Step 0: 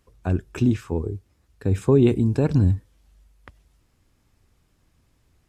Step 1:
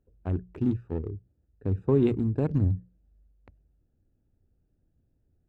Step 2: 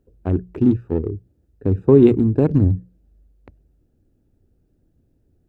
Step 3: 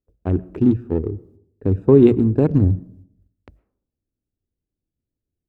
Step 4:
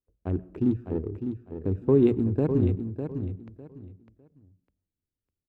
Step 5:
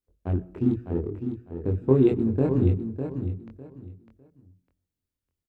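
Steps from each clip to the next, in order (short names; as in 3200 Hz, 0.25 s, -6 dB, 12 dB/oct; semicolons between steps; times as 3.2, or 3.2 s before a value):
Wiener smoothing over 41 samples; high shelf 4100 Hz -9.5 dB; notches 60/120/180 Hz; gain -5.5 dB
bell 340 Hz +5.5 dB 1.5 oct; gain +7 dB
gate -51 dBFS, range -22 dB; on a send at -22 dB: reverb RT60 0.70 s, pre-delay 70 ms
feedback echo 0.603 s, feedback 23%, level -8 dB; gain -8.5 dB
doubler 23 ms -2.5 dB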